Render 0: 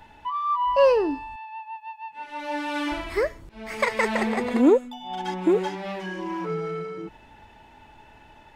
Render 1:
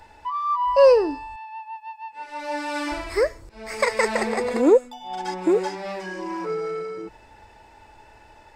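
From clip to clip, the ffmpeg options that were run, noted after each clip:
ffmpeg -i in.wav -af "equalizer=frequency=160:width_type=o:width=0.33:gain=-12,equalizer=frequency=250:width_type=o:width=0.33:gain=-7,equalizer=frequency=500:width_type=o:width=0.33:gain=5,equalizer=frequency=3150:width_type=o:width=0.33:gain=-7,equalizer=frequency=5000:width_type=o:width=0.33:gain=8,equalizer=frequency=8000:width_type=o:width=0.33:gain=8,volume=1dB" out.wav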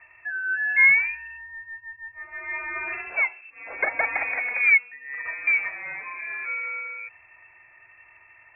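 ffmpeg -i in.wav -af "aeval=exprs='0.562*(cos(1*acos(clip(val(0)/0.562,-1,1)))-cos(1*PI/2))+0.00398*(cos(8*acos(clip(val(0)/0.562,-1,1)))-cos(8*PI/2))':channel_layout=same,lowpass=frequency=2300:width_type=q:width=0.5098,lowpass=frequency=2300:width_type=q:width=0.6013,lowpass=frequency=2300:width_type=q:width=0.9,lowpass=frequency=2300:width_type=q:width=2.563,afreqshift=-2700,volume=-3dB" out.wav

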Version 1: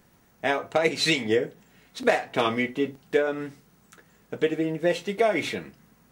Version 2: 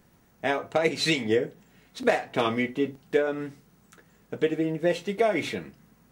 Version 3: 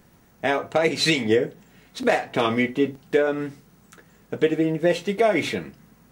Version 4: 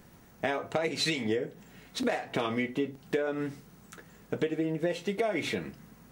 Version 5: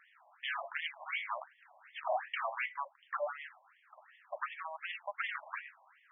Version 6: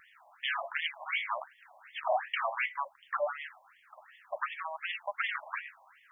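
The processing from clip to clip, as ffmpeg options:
ffmpeg -i in.wav -af "lowshelf=frequency=460:gain=3.5,volume=-2.5dB" out.wav
ffmpeg -i in.wav -af "alimiter=level_in=12.5dB:limit=-1dB:release=50:level=0:latency=1,volume=-7.5dB" out.wav
ffmpeg -i in.wav -af "acompressor=threshold=-28dB:ratio=4" out.wav
ffmpeg -i in.wav -af "aeval=exprs='0.0447*(abs(mod(val(0)/0.0447+3,4)-2)-1)':channel_layout=same,afftfilt=real='re*between(b*sr/1024,780*pow(2500/780,0.5+0.5*sin(2*PI*2.7*pts/sr))/1.41,780*pow(2500/780,0.5+0.5*sin(2*PI*2.7*pts/sr))*1.41)':imag='im*between(b*sr/1024,780*pow(2500/780,0.5+0.5*sin(2*PI*2.7*pts/sr))/1.41,780*pow(2500/780,0.5+0.5*sin(2*PI*2.7*pts/sr))*1.41)':win_size=1024:overlap=0.75,volume=3.5dB" out.wav
ffmpeg -i in.wav -af "bass=frequency=250:gain=14,treble=frequency=4000:gain=8,volume=4dB" out.wav

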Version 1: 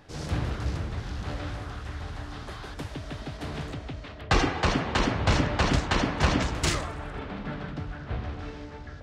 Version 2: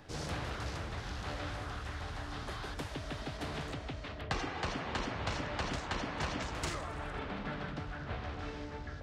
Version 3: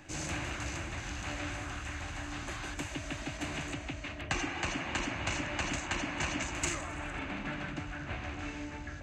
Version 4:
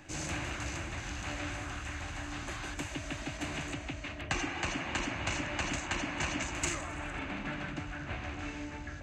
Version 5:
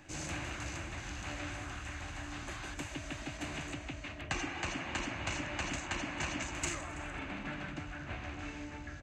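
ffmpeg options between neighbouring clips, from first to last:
ffmpeg -i in.wav -filter_complex "[0:a]acrossover=split=460|1600[link_01][link_02][link_03];[link_01]acompressor=threshold=-39dB:ratio=4[link_04];[link_02]acompressor=threshold=-40dB:ratio=4[link_05];[link_03]acompressor=threshold=-42dB:ratio=4[link_06];[link_04][link_05][link_06]amix=inputs=3:normalize=0,volume=-1dB" out.wav
ffmpeg -i in.wav -af "superequalizer=6b=1.78:7b=0.447:11b=1.58:12b=2.51:15b=3.55" out.wav
ffmpeg -i in.wav -af anull out.wav
ffmpeg -i in.wav -af "aecho=1:1:329:0.0891,volume=-3dB" out.wav

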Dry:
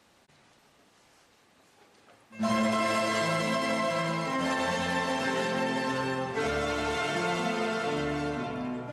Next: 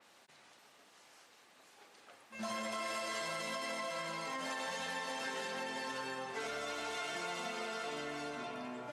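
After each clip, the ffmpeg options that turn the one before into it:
ffmpeg -i in.wav -af "highpass=frequency=580:poles=1,acompressor=threshold=-44dB:ratio=2.5,adynamicequalizer=threshold=0.00178:dfrequency=3600:dqfactor=0.7:tfrequency=3600:tqfactor=0.7:attack=5:release=100:ratio=0.375:range=2:mode=boostabove:tftype=highshelf,volume=1dB" out.wav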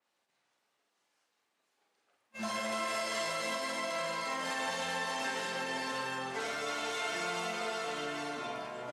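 ffmpeg -i in.wav -af "bandreject=frequency=50:width_type=h:width=6,bandreject=frequency=100:width_type=h:width=6,bandreject=frequency=150:width_type=h:width=6,bandreject=frequency=200:width_type=h:width=6,bandreject=frequency=250:width_type=h:width=6,aecho=1:1:46.65|160.3:0.631|0.251,agate=range=-21dB:threshold=-50dB:ratio=16:detection=peak,volume=3dB" out.wav

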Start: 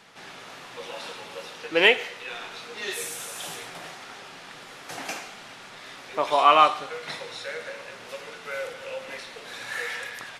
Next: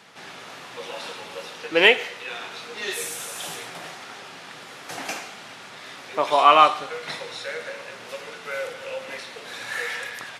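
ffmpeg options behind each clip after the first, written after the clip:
ffmpeg -i in.wav -af "highpass=77,volume=2.5dB" out.wav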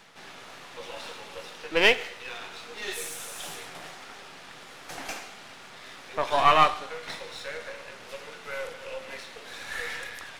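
ffmpeg -i in.wav -af "aeval=exprs='if(lt(val(0),0),0.447*val(0),val(0))':channel_layout=same,areverse,acompressor=mode=upward:threshold=-43dB:ratio=2.5,areverse,volume=-2.5dB" out.wav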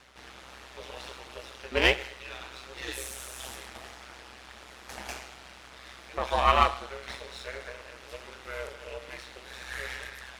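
ffmpeg -i in.wav -af "aeval=exprs='val(0)*sin(2*PI*64*n/s)':channel_layout=same" out.wav

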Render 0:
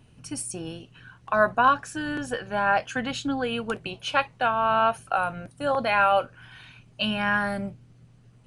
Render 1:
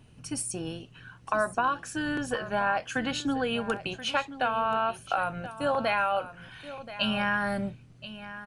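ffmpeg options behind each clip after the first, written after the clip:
ffmpeg -i in.wav -af "acompressor=threshold=-23dB:ratio=6,aecho=1:1:1029:0.2" out.wav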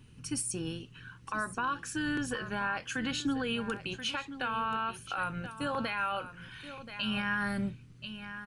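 ffmpeg -i in.wav -af "equalizer=frequency=670:width=2.4:gain=-14.5,alimiter=limit=-23.5dB:level=0:latency=1:release=83" out.wav

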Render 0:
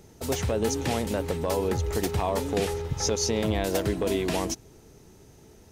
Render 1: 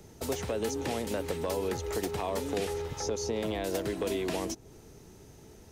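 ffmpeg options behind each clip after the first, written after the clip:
ffmpeg -i in.wav -filter_complex "[0:a]acrossover=split=280|560|1200[link_01][link_02][link_03][link_04];[link_01]acompressor=threshold=-41dB:ratio=4[link_05];[link_02]acompressor=threshold=-32dB:ratio=4[link_06];[link_03]acompressor=threshold=-42dB:ratio=4[link_07];[link_04]acompressor=threshold=-39dB:ratio=4[link_08];[link_05][link_06][link_07][link_08]amix=inputs=4:normalize=0" out.wav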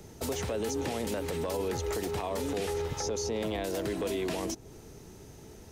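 ffmpeg -i in.wav -af "alimiter=level_in=3dB:limit=-24dB:level=0:latency=1:release=22,volume=-3dB,volume=3dB" out.wav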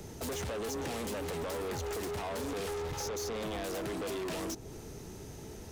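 ffmpeg -i in.wav -af "asoftclip=type=tanh:threshold=-38.5dB,volume=4dB" out.wav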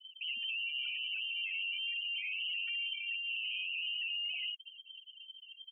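ffmpeg -i in.wav -af "afftfilt=real='re*gte(hypot(re,im),0.0355)':imag='im*gte(hypot(re,im),0.0355)':win_size=1024:overlap=0.75,lowpass=frequency=2700:width_type=q:width=0.5098,lowpass=frequency=2700:width_type=q:width=0.6013,lowpass=frequency=2700:width_type=q:width=0.9,lowpass=frequency=2700:width_type=q:width=2.563,afreqshift=-3200" out.wav

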